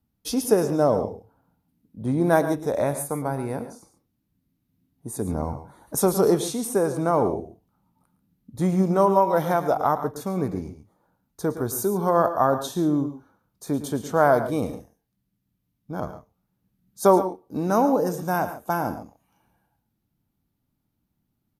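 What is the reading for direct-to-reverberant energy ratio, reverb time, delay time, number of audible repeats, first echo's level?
no reverb, no reverb, 111 ms, 1, -13.0 dB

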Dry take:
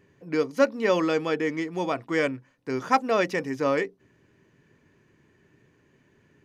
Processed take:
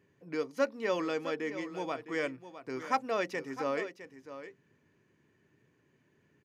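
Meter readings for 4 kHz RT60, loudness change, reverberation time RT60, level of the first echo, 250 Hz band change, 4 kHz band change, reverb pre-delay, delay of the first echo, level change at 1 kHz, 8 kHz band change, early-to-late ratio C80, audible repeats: no reverb, -8.5 dB, no reverb, -12.5 dB, -10.0 dB, -8.0 dB, no reverb, 659 ms, -8.0 dB, -8.0 dB, no reverb, 1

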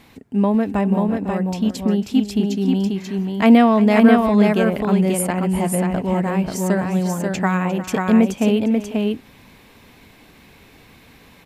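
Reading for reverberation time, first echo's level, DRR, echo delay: no reverb, -15.5 dB, no reverb, 353 ms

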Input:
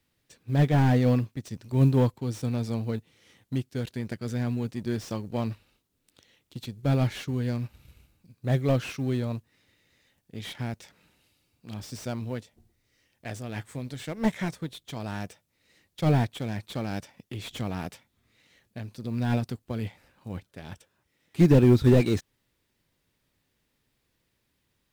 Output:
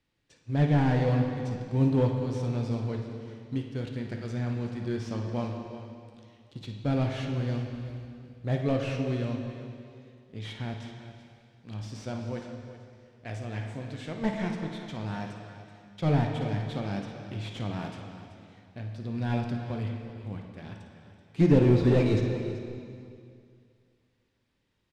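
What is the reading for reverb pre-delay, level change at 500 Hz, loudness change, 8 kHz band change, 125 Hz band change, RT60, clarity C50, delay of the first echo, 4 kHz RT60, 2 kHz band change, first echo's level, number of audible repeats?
4 ms, -1.0 dB, -2.5 dB, -7.5 dB, -2.0 dB, 2.3 s, 3.0 dB, 55 ms, 2.2 s, -1.5 dB, -10.5 dB, 2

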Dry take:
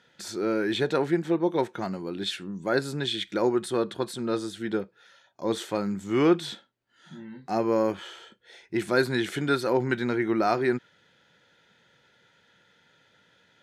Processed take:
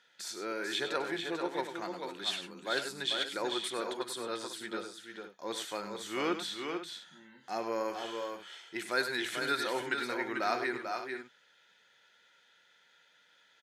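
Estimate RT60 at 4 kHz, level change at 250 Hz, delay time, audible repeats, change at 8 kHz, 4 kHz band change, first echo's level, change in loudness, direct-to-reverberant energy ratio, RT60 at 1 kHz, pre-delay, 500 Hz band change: no reverb, -13.0 dB, 97 ms, 3, -0.5 dB, -1.0 dB, -10.5 dB, -8.0 dB, no reverb, no reverb, no reverb, -10.0 dB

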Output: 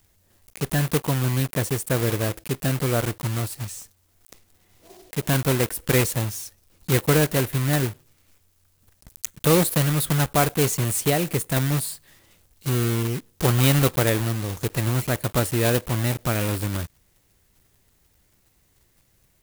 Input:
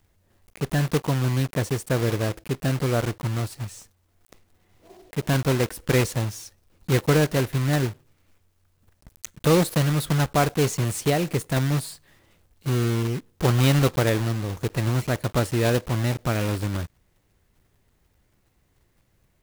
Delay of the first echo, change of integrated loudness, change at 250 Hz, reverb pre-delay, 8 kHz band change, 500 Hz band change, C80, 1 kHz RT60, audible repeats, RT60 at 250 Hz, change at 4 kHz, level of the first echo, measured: no echo, +1.0 dB, 0.0 dB, no reverb, +6.0 dB, 0.0 dB, no reverb, no reverb, no echo, no reverb, +2.0 dB, no echo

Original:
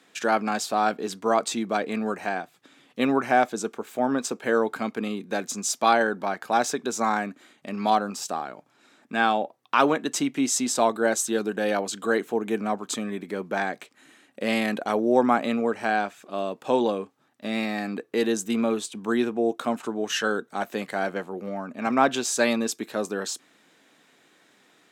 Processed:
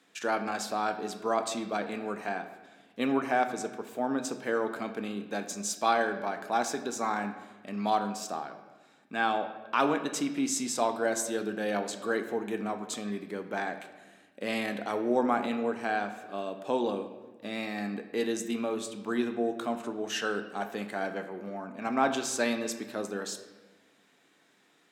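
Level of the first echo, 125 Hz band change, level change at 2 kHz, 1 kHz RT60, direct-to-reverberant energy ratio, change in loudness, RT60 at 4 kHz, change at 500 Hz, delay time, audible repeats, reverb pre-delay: no echo, -5.5 dB, -5.5 dB, 1.2 s, 7.0 dB, -6.0 dB, 0.90 s, -6.0 dB, no echo, no echo, 3 ms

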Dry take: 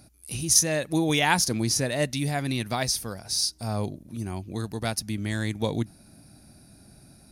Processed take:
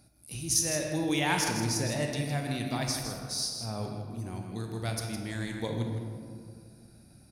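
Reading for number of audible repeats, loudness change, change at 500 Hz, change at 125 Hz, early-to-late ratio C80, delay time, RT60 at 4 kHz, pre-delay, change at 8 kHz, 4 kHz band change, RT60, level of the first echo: 1, -5.5 dB, -5.0 dB, -3.5 dB, 3.5 dB, 160 ms, 1.1 s, 24 ms, -6.0 dB, -6.0 dB, 2.1 s, -8.0 dB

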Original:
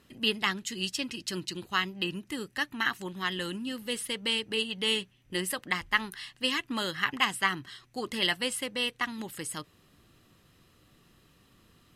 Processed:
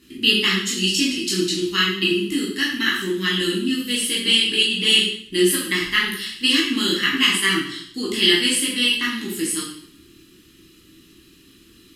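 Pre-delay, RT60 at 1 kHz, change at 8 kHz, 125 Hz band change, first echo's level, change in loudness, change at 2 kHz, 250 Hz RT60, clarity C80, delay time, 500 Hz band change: 5 ms, 0.65 s, +13.5 dB, +10.5 dB, no echo, +12.0 dB, +9.5 dB, 0.65 s, 6.5 dB, no echo, +11.0 dB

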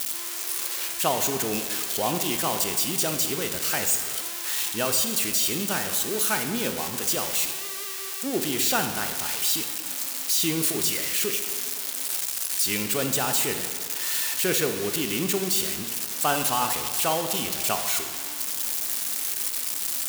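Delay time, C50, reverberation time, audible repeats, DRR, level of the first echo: no echo, 7.0 dB, 1.8 s, no echo, 6.0 dB, no echo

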